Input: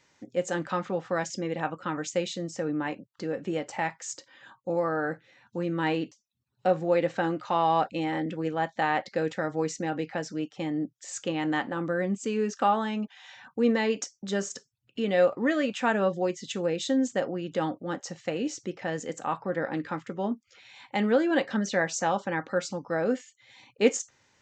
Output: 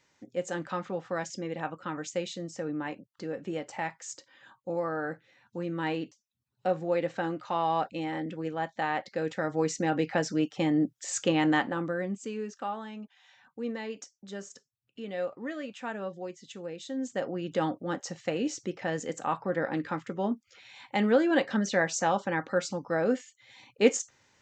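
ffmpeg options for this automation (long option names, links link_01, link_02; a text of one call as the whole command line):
ffmpeg -i in.wav -af "volume=15.5dB,afade=type=in:start_time=9.16:duration=1.04:silence=0.375837,afade=type=out:start_time=11.38:duration=0.55:silence=0.398107,afade=type=out:start_time=11.93:duration=0.68:silence=0.421697,afade=type=in:start_time=16.91:duration=0.58:silence=0.281838" out.wav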